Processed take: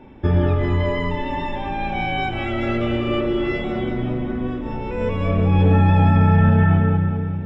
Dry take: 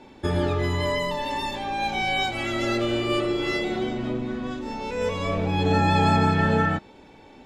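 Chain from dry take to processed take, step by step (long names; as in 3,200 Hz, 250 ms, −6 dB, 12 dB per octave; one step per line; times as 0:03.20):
Savitzky-Golay smoothing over 25 samples
low-shelf EQ 210 Hz +11.5 dB
echo with a time of its own for lows and highs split 580 Hz, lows 312 ms, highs 198 ms, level −7 dB
brickwall limiter −6.5 dBFS, peak gain reduction 5 dB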